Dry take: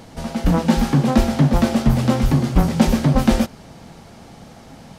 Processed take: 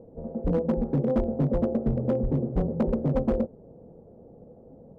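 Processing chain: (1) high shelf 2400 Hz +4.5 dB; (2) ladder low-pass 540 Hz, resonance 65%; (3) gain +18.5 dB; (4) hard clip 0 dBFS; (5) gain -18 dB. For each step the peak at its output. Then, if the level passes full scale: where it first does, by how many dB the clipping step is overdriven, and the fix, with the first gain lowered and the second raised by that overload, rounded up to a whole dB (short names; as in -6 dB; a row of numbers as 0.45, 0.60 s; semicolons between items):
-1.5, -9.0, +9.5, 0.0, -18.0 dBFS; step 3, 9.5 dB; step 3 +8.5 dB, step 5 -8 dB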